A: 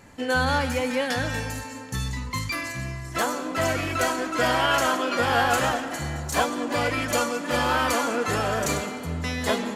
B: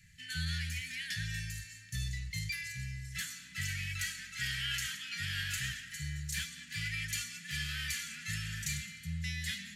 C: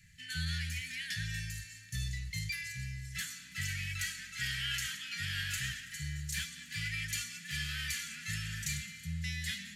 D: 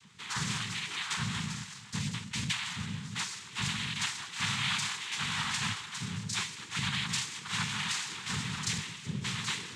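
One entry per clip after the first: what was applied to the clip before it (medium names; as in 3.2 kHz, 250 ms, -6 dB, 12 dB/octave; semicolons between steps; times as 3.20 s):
Chebyshev band-stop 170–1800 Hz, order 4; trim -7 dB
feedback echo behind a high-pass 329 ms, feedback 82%, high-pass 4.1 kHz, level -22 dB
noise-vocoded speech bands 6; trim +5 dB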